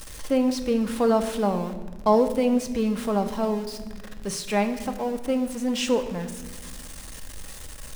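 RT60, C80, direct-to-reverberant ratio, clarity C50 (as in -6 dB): 1.4 s, 12.0 dB, 6.0 dB, 10.5 dB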